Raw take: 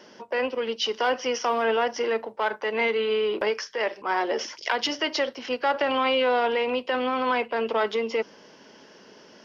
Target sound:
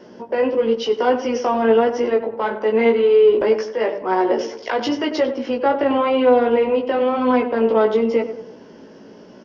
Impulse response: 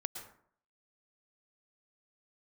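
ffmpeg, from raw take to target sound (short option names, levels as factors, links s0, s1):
-filter_complex "[0:a]asettb=1/sr,asplit=3[s0][s1][s2];[s0]atrim=end=5.564[s3];[s1]atrim=start=5.56:end=6.79,asetpts=PTS-STARTPTS,afade=t=in:d=0.004:c=qsin,afade=t=out:st=1.226:d=0.004:c=qsin,highshelf=f=4900:g=-8[s4];[s2]atrim=start=6.786[s5];[s3][s4]acrossfade=d=0.004:c1=hsin:c2=qsin[s6];[s6][s5]acrossfade=d=0.004:c1=qsin:c2=hsin,asplit=2[s7][s8];[s8]adelay=95,lowpass=f=1800:p=1,volume=0.316,asplit=2[s9][s10];[s10]adelay=95,lowpass=f=1800:p=1,volume=0.47,asplit=2[s11][s12];[s12]adelay=95,lowpass=f=1800:p=1,volume=0.47,asplit=2[s13][s14];[s14]adelay=95,lowpass=f=1800:p=1,volume=0.47,asplit=2[s15][s16];[s16]adelay=95,lowpass=f=1800:p=1,volume=0.47[s17];[s7][s9][s11][s13][s15][s17]amix=inputs=6:normalize=0,flanger=delay=16:depth=2.4:speed=0.95,tiltshelf=f=760:g=8.5,volume=2.51"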